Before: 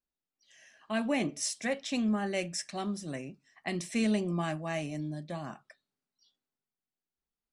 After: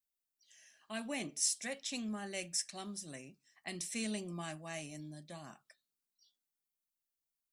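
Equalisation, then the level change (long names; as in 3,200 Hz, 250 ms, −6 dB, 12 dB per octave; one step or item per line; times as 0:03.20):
first-order pre-emphasis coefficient 0.8
+2.5 dB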